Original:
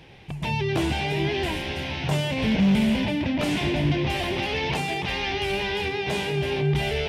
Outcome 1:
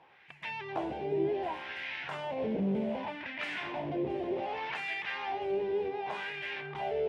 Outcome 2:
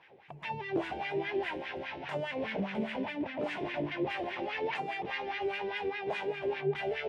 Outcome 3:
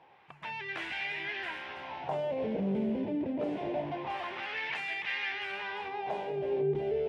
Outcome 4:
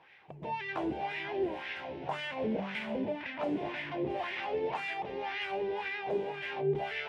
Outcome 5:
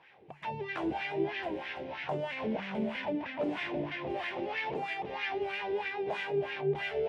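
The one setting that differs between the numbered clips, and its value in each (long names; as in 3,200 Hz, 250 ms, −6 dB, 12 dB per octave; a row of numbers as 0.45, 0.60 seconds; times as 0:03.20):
LFO wah, speed: 0.66, 4.9, 0.25, 1.9, 3.1 Hertz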